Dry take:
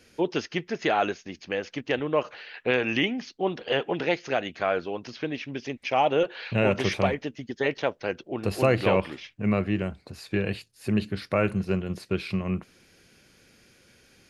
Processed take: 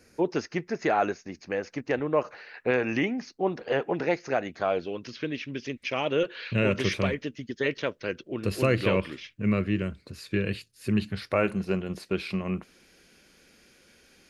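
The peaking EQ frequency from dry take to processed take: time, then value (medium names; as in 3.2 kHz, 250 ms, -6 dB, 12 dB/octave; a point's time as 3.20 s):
peaking EQ -14 dB 0.52 oct
4.53 s 3.2 kHz
4.94 s 780 Hz
10.89 s 780 Hz
11.47 s 110 Hz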